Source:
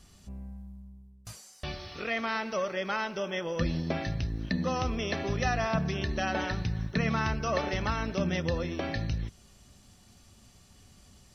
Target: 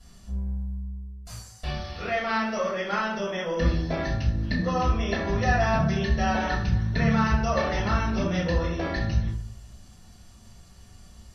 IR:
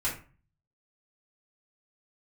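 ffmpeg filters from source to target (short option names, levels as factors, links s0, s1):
-filter_complex "[0:a]asettb=1/sr,asplit=3[s0][s1][s2];[s0]atrim=end=4.624[s3];[s1]atrim=start=4.62:end=5.6,asetpts=PTS-STARTPTS,afade=t=in:d=0.004:c=qsin,afade=t=out:st=0.976:d=0.004:c=qsin,highshelf=f=8200:g=-10[s4];[s2]atrim=start=5.596[s5];[s3][s4]acrossfade=d=0.004:c1=hsin:c2=qsin[s6];[s6][s5]acrossfade=d=0.004:c1=qsin:c2=hsin[s7];[1:a]atrim=start_sample=2205,asetrate=29988,aresample=44100[s8];[s7][s8]afir=irnorm=-1:irlink=0,volume=0.562"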